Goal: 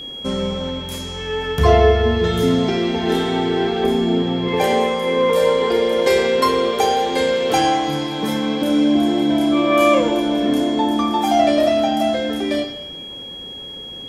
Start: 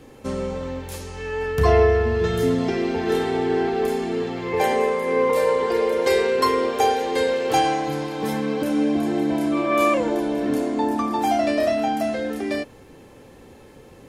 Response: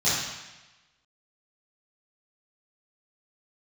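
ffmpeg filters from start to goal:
-filter_complex "[0:a]asettb=1/sr,asplit=3[s0][s1][s2];[s0]atrim=end=3.844[s3];[s1]atrim=start=3.84:end=4.48,asetpts=PTS-STARTPTS,afade=t=in:d=0.004:c=qsin,afade=t=out:st=0.636:d=0.004:c=qsin,tiltshelf=f=970:g=5[s4];[s2]atrim=start=4.476[s5];[s3][s4]acrossfade=d=0.004:c1=hsin:c2=qsin[s6];[s6][s5]acrossfade=d=0.004:c1=qsin:c2=hsin,aeval=exprs='val(0)+0.0251*sin(2*PI*3300*n/s)':c=same,asplit=2[s7][s8];[1:a]atrim=start_sample=2205[s9];[s8][s9]afir=irnorm=-1:irlink=0,volume=0.1[s10];[s7][s10]amix=inputs=2:normalize=0,volume=1.41"

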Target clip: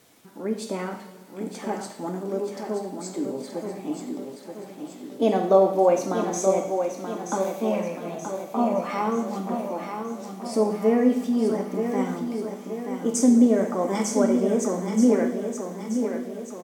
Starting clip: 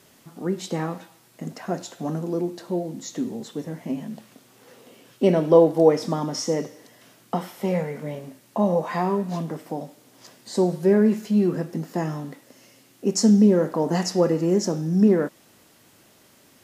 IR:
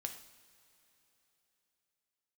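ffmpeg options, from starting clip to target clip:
-filter_complex "[0:a]asetrate=50951,aresample=44100,atempo=0.865537,aecho=1:1:928|1856|2784|3712|4640|5568:0.447|0.232|0.121|0.0628|0.0327|0.017[s0];[1:a]atrim=start_sample=2205[s1];[s0][s1]afir=irnorm=-1:irlink=0"

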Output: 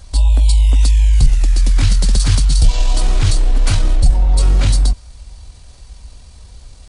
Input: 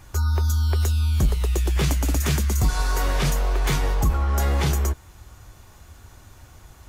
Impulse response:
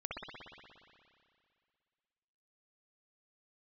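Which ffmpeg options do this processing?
-af "bass=f=250:g=11,treble=f=4000:g=9,asetrate=29433,aresample=44100,atempo=1.49831"

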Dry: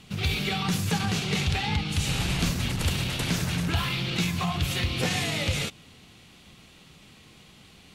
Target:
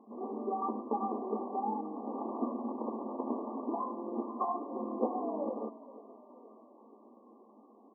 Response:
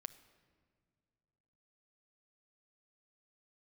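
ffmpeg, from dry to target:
-filter_complex "[0:a]asplit=6[s0][s1][s2][s3][s4][s5];[s1]adelay=474,afreqshift=-32,volume=0.133[s6];[s2]adelay=948,afreqshift=-64,volume=0.0785[s7];[s3]adelay=1422,afreqshift=-96,volume=0.0462[s8];[s4]adelay=1896,afreqshift=-128,volume=0.0275[s9];[s5]adelay=2370,afreqshift=-160,volume=0.0162[s10];[s0][s6][s7][s8][s9][s10]amix=inputs=6:normalize=0,afftfilt=real='re*between(b*sr/4096,210,1200)':imag='im*between(b*sr/4096,210,1200)':win_size=4096:overlap=0.75"

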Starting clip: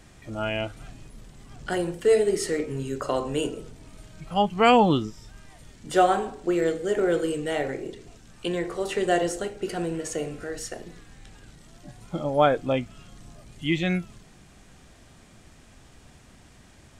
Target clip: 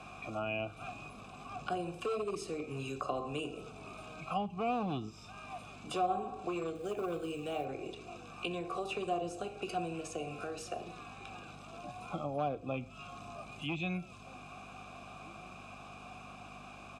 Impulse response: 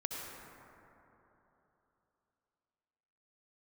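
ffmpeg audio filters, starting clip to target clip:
-filter_complex "[0:a]aeval=exprs='val(0)+0.00562*(sin(2*PI*50*n/s)+sin(2*PI*2*50*n/s)/2+sin(2*PI*3*50*n/s)/3+sin(2*PI*4*50*n/s)/4+sin(2*PI*5*50*n/s)/5)':c=same,highpass=f=100:p=1,acrossover=split=470[s0][s1];[s0]asoftclip=type=hard:threshold=0.0708[s2];[s1]acompressor=threshold=0.0126:ratio=12[s3];[s2][s3]amix=inputs=2:normalize=0,lowshelf=f=130:g=7,aecho=1:1:0.8:0.47,asplit=2[s4][s5];[s5]adelay=1574,volume=0.0355,highshelf=f=4000:g=-35.4[s6];[s4][s6]amix=inputs=2:normalize=0,asplit=2[s7][s8];[1:a]atrim=start_sample=2205,atrim=end_sample=6174[s9];[s8][s9]afir=irnorm=-1:irlink=0,volume=0.178[s10];[s7][s10]amix=inputs=2:normalize=0,acrossover=split=150|3000[s11][s12][s13];[s12]acompressor=threshold=0.00562:ratio=2[s14];[s11][s14][s13]amix=inputs=3:normalize=0,asplit=3[s15][s16][s17];[s15]bandpass=f=730:t=q:w=8,volume=1[s18];[s16]bandpass=f=1090:t=q:w=8,volume=0.501[s19];[s17]bandpass=f=2440:t=q:w=8,volume=0.355[s20];[s18][s19][s20]amix=inputs=3:normalize=0,highshelf=f=6200:g=6.5,asettb=1/sr,asplit=3[s21][s22][s23];[s21]atrim=end=6.754[s24];[s22]atrim=start=6.75:end=7.65,asetpts=PTS-STARTPTS,afade=t=in:d=0.004:c=qsin,afade=t=out:st=0.896:d=0.004:c=qsin,acrusher=bits=8:mode=log:mix=0:aa=0.000001[s25];[s23]atrim=start=7.646[s26];[s24][s25]acrossfade=d=0.004:c1=hsin:c2=qsin[s27];[s27][s26]acrossfade=d=0.004:c1=qsin:c2=hsin,volume=7.08"

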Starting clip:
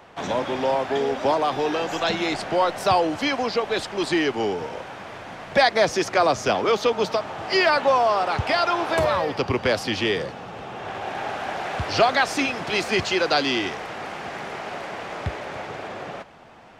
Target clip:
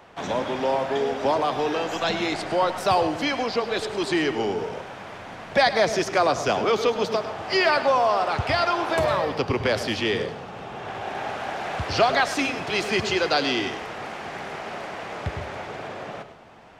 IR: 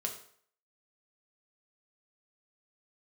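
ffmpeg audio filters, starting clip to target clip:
-filter_complex "[0:a]asplit=2[s0][s1];[1:a]atrim=start_sample=2205,lowshelf=f=170:g=10,adelay=103[s2];[s1][s2]afir=irnorm=-1:irlink=0,volume=0.237[s3];[s0][s3]amix=inputs=2:normalize=0,volume=0.841"

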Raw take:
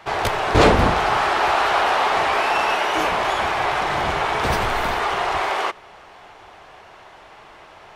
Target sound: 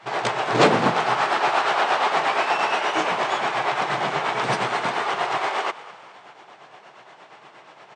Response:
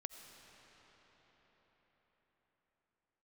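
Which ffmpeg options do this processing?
-filter_complex "[0:a]afftfilt=real='re*between(b*sr/4096,110,9100)':imag='im*between(b*sr/4096,110,9100)':win_size=4096:overlap=0.75,tremolo=f=8.5:d=0.53,asplit=5[s0][s1][s2][s3][s4];[s1]adelay=208,afreqshift=67,volume=0.133[s5];[s2]adelay=416,afreqshift=134,volume=0.0617[s6];[s3]adelay=624,afreqshift=201,volume=0.0282[s7];[s4]adelay=832,afreqshift=268,volume=0.013[s8];[s0][s5][s6][s7][s8]amix=inputs=5:normalize=0"

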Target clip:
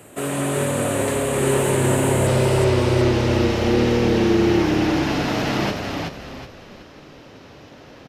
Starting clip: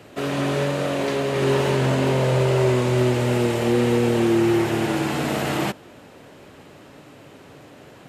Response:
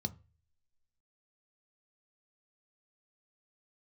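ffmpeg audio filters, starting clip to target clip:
-filter_complex "[0:a]asetnsamples=n=441:p=0,asendcmd='2.27 highshelf g -6',highshelf=f=6700:t=q:w=3:g=9,asplit=5[s0][s1][s2][s3][s4];[s1]adelay=373,afreqshift=-37,volume=0.631[s5];[s2]adelay=746,afreqshift=-74,volume=0.221[s6];[s3]adelay=1119,afreqshift=-111,volume=0.0776[s7];[s4]adelay=1492,afreqshift=-148,volume=0.0269[s8];[s0][s5][s6][s7][s8]amix=inputs=5:normalize=0"

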